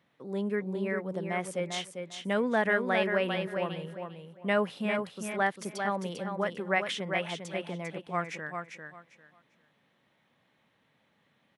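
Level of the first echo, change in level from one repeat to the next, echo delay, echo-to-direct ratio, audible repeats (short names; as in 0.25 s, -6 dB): -6.0 dB, -13.5 dB, 0.398 s, -6.0 dB, 3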